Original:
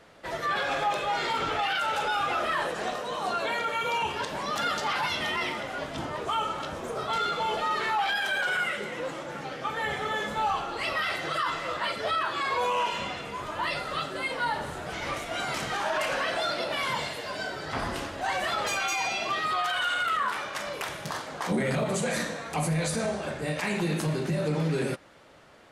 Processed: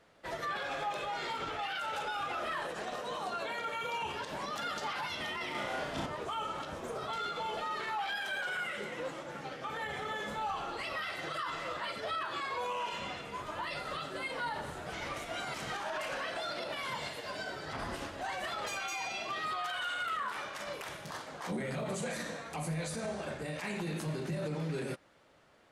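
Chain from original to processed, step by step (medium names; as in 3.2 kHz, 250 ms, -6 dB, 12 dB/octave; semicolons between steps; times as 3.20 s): peak limiter -25 dBFS, peak gain reduction 7 dB; 5.51–6.06 s: flutter echo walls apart 5.8 m, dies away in 0.65 s; upward expansion 1.5:1, over -44 dBFS; trim -2.5 dB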